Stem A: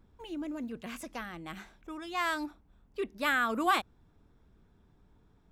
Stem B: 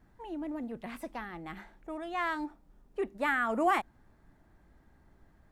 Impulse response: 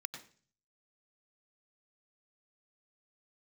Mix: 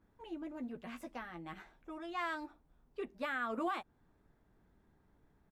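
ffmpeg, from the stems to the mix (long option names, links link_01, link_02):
-filter_complex "[0:a]highpass=frequency=190:poles=1,volume=-4.5dB[link_01];[1:a]aemphasis=mode=production:type=75kf,acompressor=threshold=-33dB:ratio=2,adelay=12,volume=-10.5dB[link_02];[link_01][link_02]amix=inputs=2:normalize=0,lowpass=frequency=2000:poles=1,alimiter=level_in=3.5dB:limit=-24dB:level=0:latency=1:release=197,volume=-3.5dB"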